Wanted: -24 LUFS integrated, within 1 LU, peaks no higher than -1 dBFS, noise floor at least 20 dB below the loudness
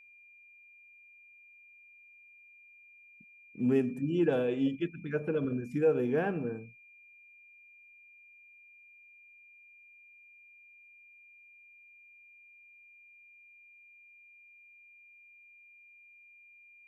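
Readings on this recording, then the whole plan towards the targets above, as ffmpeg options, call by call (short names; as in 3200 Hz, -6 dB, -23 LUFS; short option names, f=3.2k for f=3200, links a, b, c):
steady tone 2400 Hz; tone level -55 dBFS; loudness -31.0 LUFS; peak -17.0 dBFS; loudness target -24.0 LUFS
-> -af "bandreject=f=2.4k:w=30"
-af "volume=7dB"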